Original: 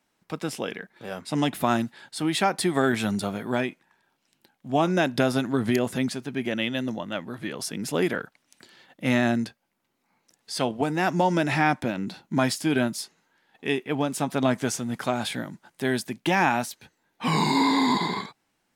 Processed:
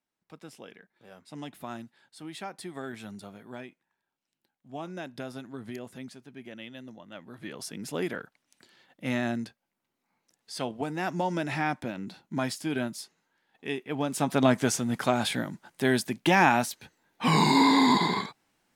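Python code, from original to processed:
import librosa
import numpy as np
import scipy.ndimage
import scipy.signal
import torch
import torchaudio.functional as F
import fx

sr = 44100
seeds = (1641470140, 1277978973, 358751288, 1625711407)

y = fx.gain(x, sr, db=fx.line((7.01, -16.0), (7.49, -7.0), (13.84, -7.0), (14.31, 1.0)))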